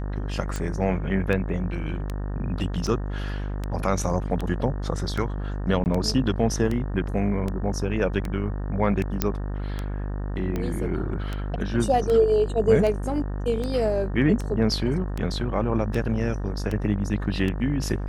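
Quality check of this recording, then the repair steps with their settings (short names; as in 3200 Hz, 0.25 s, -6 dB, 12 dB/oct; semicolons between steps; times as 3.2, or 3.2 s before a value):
buzz 50 Hz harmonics 37 -29 dBFS
tick 78 rpm -16 dBFS
5.84–5.86 gap 19 ms
9.22 pop -6 dBFS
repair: de-click; de-hum 50 Hz, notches 37; interpolate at 5.84, 19 ms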